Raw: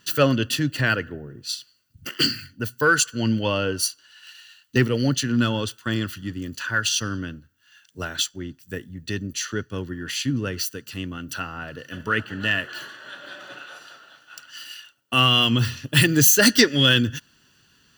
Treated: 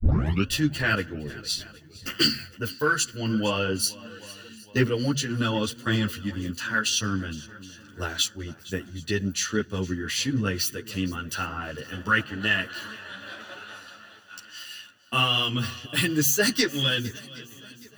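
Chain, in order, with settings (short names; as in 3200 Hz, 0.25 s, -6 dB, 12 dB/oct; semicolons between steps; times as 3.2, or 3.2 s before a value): tape start at the beginning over 0.46 s; de-hum 71 Hz, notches 2; vocal rider within 4 dB 0.5 s; swung echo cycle 0.768 s, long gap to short 1.5:1, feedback 41%, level -20 dB; ensemble effect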